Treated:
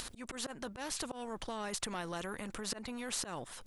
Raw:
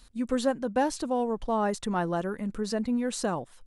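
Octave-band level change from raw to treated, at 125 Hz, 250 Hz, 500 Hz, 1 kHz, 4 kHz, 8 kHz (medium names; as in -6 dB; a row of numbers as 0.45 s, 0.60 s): -12.0 dB, -15.0 dB, -14.5 dB, -12.5 dB, -0.5 dB, 0.0 dB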